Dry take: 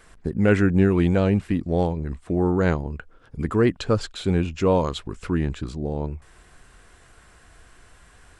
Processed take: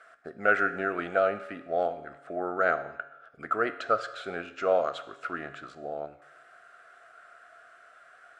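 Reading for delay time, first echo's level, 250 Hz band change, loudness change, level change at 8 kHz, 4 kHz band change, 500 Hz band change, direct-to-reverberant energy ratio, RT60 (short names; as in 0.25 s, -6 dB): none, none, -18.0 dB, -6.5 dB, under -10 dB, -9.5 dB, -5.0 dB, 9.5 dB, 1.0 s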